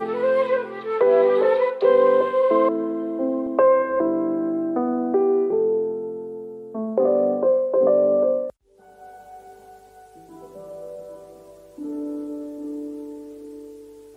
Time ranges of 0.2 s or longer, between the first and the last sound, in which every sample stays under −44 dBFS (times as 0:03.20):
0:08.50–0:08.80